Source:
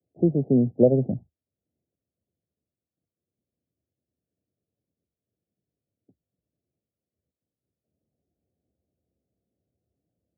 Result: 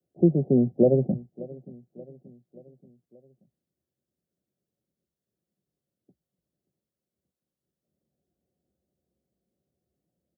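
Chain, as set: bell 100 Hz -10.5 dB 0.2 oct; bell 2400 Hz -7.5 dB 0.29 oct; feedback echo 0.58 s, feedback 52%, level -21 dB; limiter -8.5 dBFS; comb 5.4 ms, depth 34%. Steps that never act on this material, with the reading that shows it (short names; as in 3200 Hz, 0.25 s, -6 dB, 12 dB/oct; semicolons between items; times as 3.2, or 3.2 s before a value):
bell 2400 Hz: input band ends at 760 Hz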